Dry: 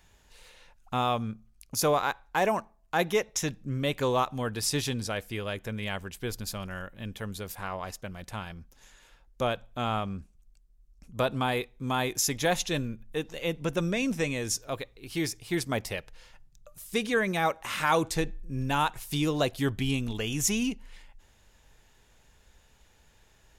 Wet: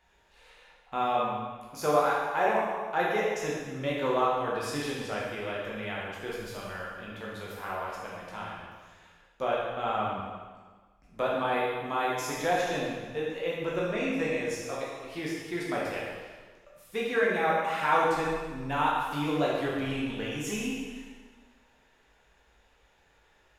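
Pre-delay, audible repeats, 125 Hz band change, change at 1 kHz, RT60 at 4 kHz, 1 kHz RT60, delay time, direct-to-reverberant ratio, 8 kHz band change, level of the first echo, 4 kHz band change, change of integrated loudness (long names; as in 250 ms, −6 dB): 5 ms, no echo audible, −7.0 dB, +2.5 dB, 1.4 s, 1.4 s, no echo audible, −5.5 dB, −10.5 dB, no echo audible, −5.5 dB, −0.5 dB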